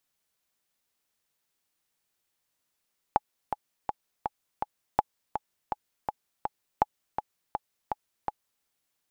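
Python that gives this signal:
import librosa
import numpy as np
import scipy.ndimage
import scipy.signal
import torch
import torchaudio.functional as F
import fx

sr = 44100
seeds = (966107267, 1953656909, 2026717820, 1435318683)

y = fx.click_track(sr, bpm=164, beats=5, bars=3, hz=843.0, accent_db=8.0, level_db=-7.5)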